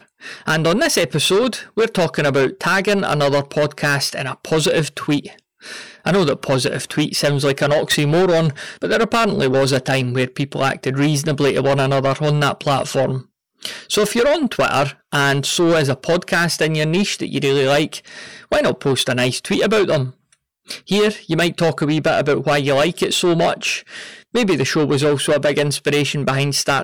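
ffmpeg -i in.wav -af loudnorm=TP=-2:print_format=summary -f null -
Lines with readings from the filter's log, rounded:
Input Integrated:    -17.6 LUFS
Input True Peak:      -8.8 dBTP
Input LRA:             1.9 LU
Input Threshold:     -27.9 LUFS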